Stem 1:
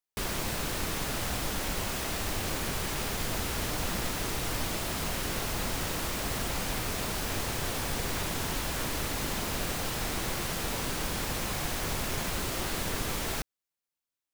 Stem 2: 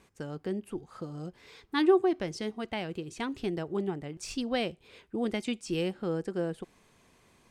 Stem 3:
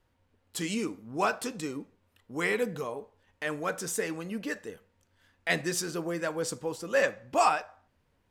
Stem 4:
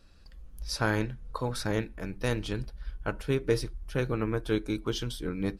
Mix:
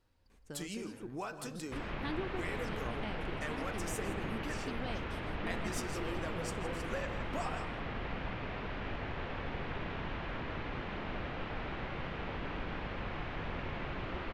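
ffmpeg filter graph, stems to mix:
-filter_complex "[0:a]lowpass=f=2.8k:w=0.5412,lowpass=f=2.8k:w=1.3066,adelay=1550,volume=-7dB,asplit=2[a][b];[b]volume=-4dB[c];[1:a]adelay=300,volume=-7.5dB[d];[2:a]volume=-5dB,asplit=2[e][f];[f]volume=-20dB[g];[3:a]alimiter=limit=-23dB:level=0:latency=1,volume=-18.5dB,asplit=2[h][i];[i]volume=-9.5dB[j];[d][e][h]amix=inputs=3:normalize=0,acompressor=threshold=-38dB:ratio=6,volume=0dB[k];[c][g][j]amix=inputs=3:normalize=0,aecho=0:1:162:1[l];[a][k][l]amix=inputs=3:normalize=0"

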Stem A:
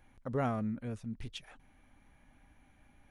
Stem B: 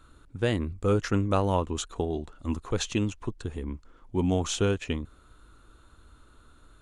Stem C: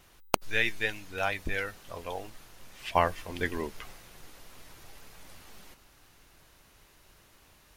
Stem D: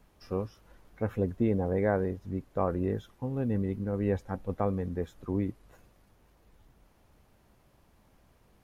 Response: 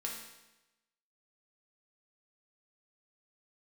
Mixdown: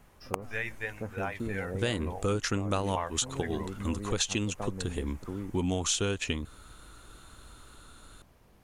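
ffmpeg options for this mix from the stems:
-filter_complex "[0:a]acompressor=threshold=-45dB:ratio=2.5,volume=-10dB[a];[1:a]highshelf=f=2.2k:g=11.5,adelay=1400,volume=1.5dB[b];[2:a]equalizer=f=125:t=o:w=1:g=12,equalizer=f=250:t=o:w=1:g=-3,equalizer=f=500:t=o:w=1:g=5,equalizer=f=1k:t=o:w=1:g=8,equalizer=f=2k:t=o:w=1:g=5,equalizer=f=4k:t=o:w=1:g=-9,equalizer=f=8k:t=o:w=1:g=5,volume=-10dB,asplit=2[c][d];[3:a]acompressor=threshold=-44dB:ratio=2,volume=2.5dB[e];[d]apad=whole_len=362461[f];[b][f]sidechaincompress=threshold=-39dB:ratio=8:attack=47:release=121[g];[a][g][c][e]amix=inputs=4:normalize=0,acompressor=threshold=-28dB:ratio=3"

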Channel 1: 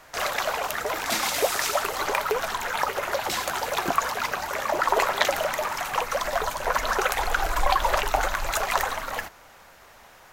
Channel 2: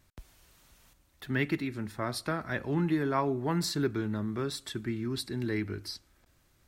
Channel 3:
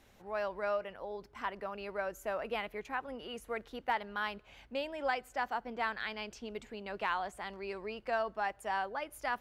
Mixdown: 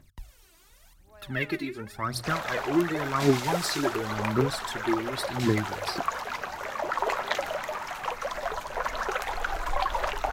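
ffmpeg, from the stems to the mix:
-filter_complex "[0:a]highshelf=f=6.8k:g=-10,adelay=2100,volume=-5.5dB[a];[1:a]bandreject=f=60:t=h:w=6,bandreject=f=120:t=h:w=6,aphaser=in_gain=1:out_gain=1:delay=3.1:decay=0.77:speed=0.91:type=triangular,volume=-0.5dB[b];[2:a]adelay=800,volume=-17.5dB[c];[a][b][c]amix=inputs=3:normalize=0,bandreject=f=50:t=h:w=6,bandreject=f=100:t=h:w=6"

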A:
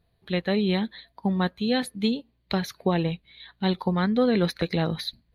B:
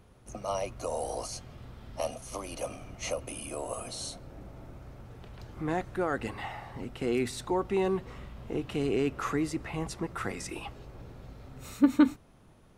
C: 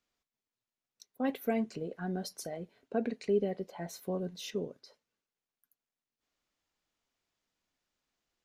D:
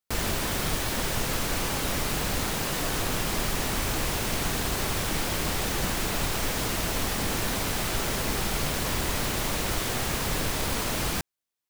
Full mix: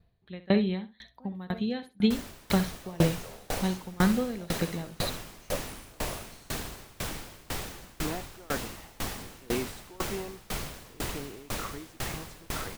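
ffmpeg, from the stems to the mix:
-filter_complex "[0:a]bass=f=250:g=4,treble=f=4k:g=-6,volume=2dB,asplit=2[a][b];[b]volume=-10dB[c];[1:a]adelay=2400,volume=1dB[d];[2:a]volume=-10dB,asplit=2[e][f];[f]volume=-8dB[g];[3:a]adelay=2000,volume=-2.5dB[h];[c][g]amix=inputs=2:normalize=0,aecho=0:1:65|130|195:1|0.2|0.04[i];[a][d][e][h][i]amix=inputs=5:normalize=0,aeval=exprs='val(0)*pow(10,-27*if(lt(mod(2*n/s,1),2*abs(2)/1000),1-mod(2*n/s,1)/(2*abs(2)/1000),(mod(2*n/s,1)-2*abs(2)/1000)/(1-2*abs(2)/1000))/20)':c=same"

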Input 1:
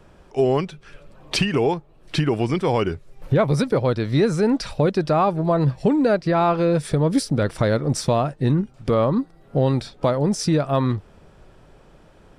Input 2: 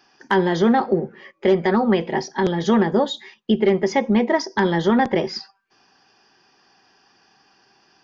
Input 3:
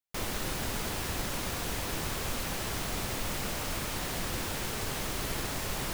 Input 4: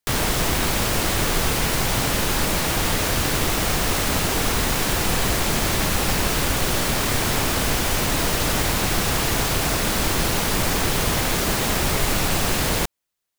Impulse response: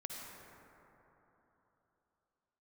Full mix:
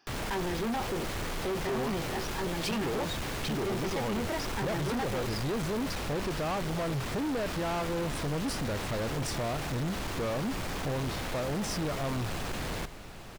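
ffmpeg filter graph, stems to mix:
-filter_complex "[0:a]adelay=1300,volume=-6dB[a];[1:a]volume=-8dB[b];[2:a]volume=-9dB[c];[3:a]highshelf=f=6.1k:g=-11,volume=-10dB,asplit=2[d][e];[e]volume=-14dB,aecho=0:1:844:1[f];[a][b][c][d][f]amix=inputs=5:normalize=0,asoftclip=type=tanh:threshold=-29dB"

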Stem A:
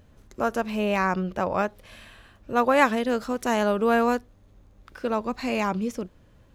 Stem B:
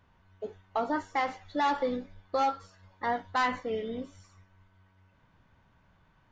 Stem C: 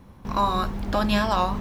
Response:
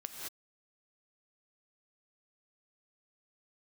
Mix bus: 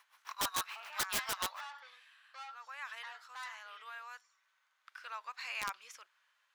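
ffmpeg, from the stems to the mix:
-filter_complex "[0:a]highshelf=f=7k:g=-8.5,alimiter=limit=-17dB:level=0:latency=1:release=46,volume=-4.5dB[a];[1:a]asoftclip=type=tanh:threshold=-27dB,acrossover=split=940[b][c];[b]aeval=exprs='val(0)*(1-0.5/2+0.5/2*cos(2*PI*1.2*n/s))':c=same[d];[c]aeval=exprs='val(0)*(1-0.5/2-0.5/2*cos(2*PI*1.2*n/s))':c=same[e];[d][e]amix=inputs=2:normalize=0,volume=-5.5dB,asplit=2[f][g];[2:a]aeval=exprs='val(0)*pow(10,-27*(0.5-0.5*cos(2*PI*6.9*n/s))/20)':c=same,volume=1.5dB[h];[g]apad=whole_len=288459[i];[a][i]sidechaincompress=threshold=-47dB:ratio=8:attack=11:release=774[j];[j][f][h]amix=inputs=3:normalize=0,highpass=f=1.2k:w=0.5412,highpass=f=1.2k:w=1.3066,aeval=exprs='(mod(22.4*val(0)+1,2)-1)/22.4':c=same"

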